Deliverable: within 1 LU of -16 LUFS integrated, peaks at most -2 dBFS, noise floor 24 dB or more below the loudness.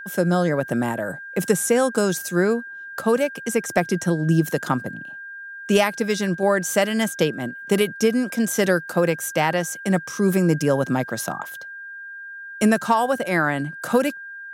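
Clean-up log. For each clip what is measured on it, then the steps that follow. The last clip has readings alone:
steady tone 1.6 kHz; tone level -34 dBFS; loudness -22.0 LUFS; peak level -5.0 dBFS; loudness target -16.0 LUFS
-> band-stop 1.6 kHz, Q 30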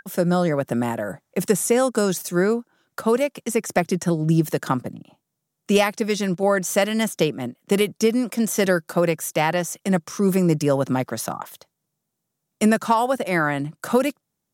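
steady tone not found; loudness -22.0 LUFS; peak level -5.5 dBFS; loudness target -16.0 LUFS
-> trim +6 dB; peak limiter -2 dBFS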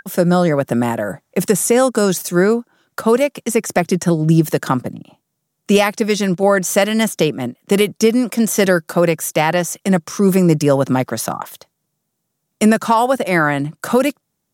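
loudness -16.5 LUFS; peak level -2.0 dBFS; noise floor -74 dBFS

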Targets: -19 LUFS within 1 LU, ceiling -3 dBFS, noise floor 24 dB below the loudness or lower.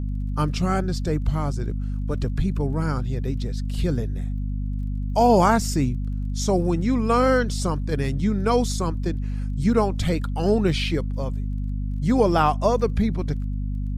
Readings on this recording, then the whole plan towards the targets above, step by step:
tick rate 22 per s; hum 50 Hz; highest harmonic 250 Hz; hum level -24 dBFS; loudness -23.5 LUFS; peak level -6.0 dBFS; loudness target -19.0 LUFS
-> de-click; hum notches 50/100/150/200/250 Hz; trim +4.5 dB; peak limiter -3 dBFS

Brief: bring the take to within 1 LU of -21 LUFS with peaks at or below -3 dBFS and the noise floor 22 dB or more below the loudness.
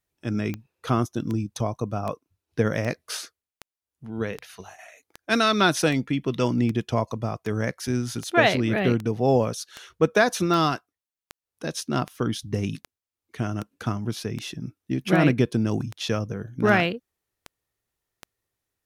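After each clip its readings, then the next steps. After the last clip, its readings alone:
clicks found 24; loudness -25.0 LUFS; peak level -5.5 dBFS; loudness target -21.0 LUFS
-> de-click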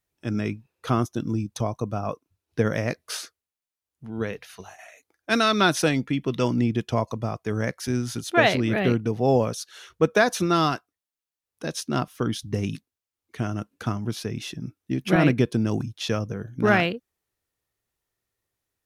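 clicks found 0; loudness -25.0 LUFS; peak level -5.5 dBFS; loudness target -21.0 LUFS
-> trim +4 dB; peak limiter -3 dBFS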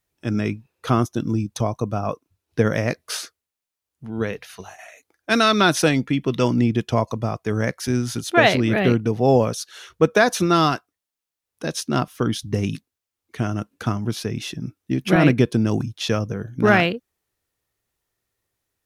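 loudness -21.5 LUFS; peak level -3.0 dBFS; noise floor -86 dBFS

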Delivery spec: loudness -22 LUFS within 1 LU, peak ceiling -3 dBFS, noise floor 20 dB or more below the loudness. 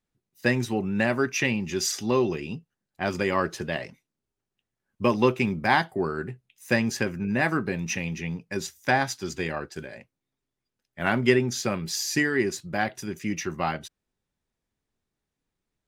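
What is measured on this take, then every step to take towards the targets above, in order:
loudness -26.5 LUFS; peak level -6.0 dBFS; loudness target -22.0 LUFS
-> trim +4.5 dB; peak limiter -3 dBFS

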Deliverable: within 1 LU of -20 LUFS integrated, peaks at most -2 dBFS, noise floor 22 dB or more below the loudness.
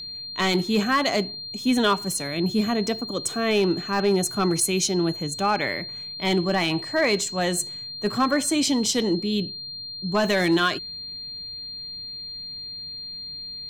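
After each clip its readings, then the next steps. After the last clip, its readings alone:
clipped samples 0.2%; clipping level -13.5 dBFS; steady tone 4.2 kHz; tone level -33 dBFS; loudness -24.5 LUFS; peak level -13.5 dBFS; loudness target -20.0 LUFS
-> clip repair -13.5 dBFS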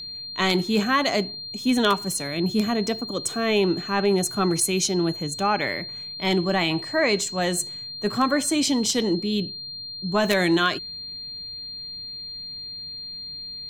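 clipped samples 0.0%; steady tone 4.2 kHz; tone level -33 dBFS
-> band-stop 4.2 kHz, Q 30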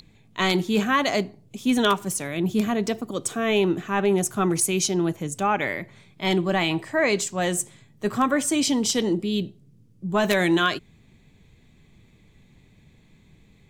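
steady tone not found; loudness -23.5 LUFS; peak level -4.5 dBFS; loudness target -20.0 LUFS
-> trim +3.5 dB; peak limiter -2 dBFS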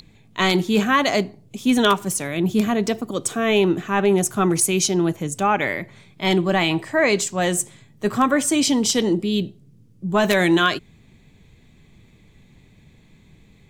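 loudness -20.0 LUFS; peak level -2.0 dBFS; noise floor -53 dBFS

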